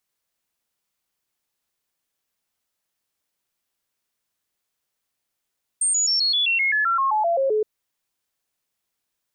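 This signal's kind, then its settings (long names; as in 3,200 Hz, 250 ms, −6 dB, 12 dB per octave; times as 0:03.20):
stepped sweep 8,640 Hz down, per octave 3, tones 14, 0.13 s, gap 0.00 s −17.5 dBFS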